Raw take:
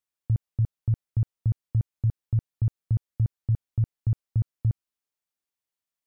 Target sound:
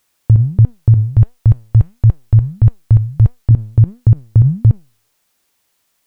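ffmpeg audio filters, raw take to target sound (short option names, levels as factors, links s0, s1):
-filter_complex "[0:a]asettb=1/sr,asplit=3[s0][s1][s2];[s0]atrim=end=1.044[s3];[s1]atrim=start=1.04:end=3.51,asetpts=PTS-STARTPTS,afade=t=in:d=0.004:c=qsin,afade=t=out:st=2.466:d=0.004:c=qsin,equalizer=f=200:w=0.72:g=-14.5[s4];[s2]atrim=start=3.506[s5];[s3][s4]acrossfade=d=0.004:c1=hsin:c2=qsin[s6];[s6][s5]acrossfade=d=0.004:c1=qsin:c2=hsin,flanger=delay=4:depth=5.3:regen=89:speed=1.5:shape=sinusoidal,alimiter=level_in=35.5:limit=0.891:release=50:level=0:latency=1,volume=0.891"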